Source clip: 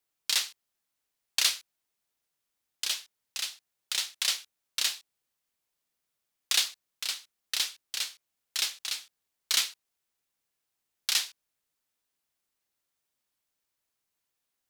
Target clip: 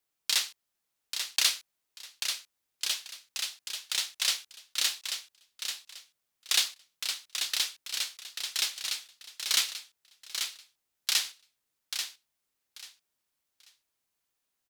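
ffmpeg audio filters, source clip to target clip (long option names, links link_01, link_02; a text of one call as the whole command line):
ffmpeg -i in.wav -af "aecho=1:1:838|1676|2514:0.447|0.0983|0.0216" out.wav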